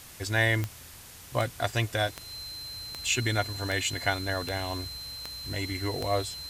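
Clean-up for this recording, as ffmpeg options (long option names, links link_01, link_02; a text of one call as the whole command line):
ffmpeg -i in.wav -af "adeclick=threshold=4,bandreject=frequency=4100:width=30,afwtdn=0.0045" out.wav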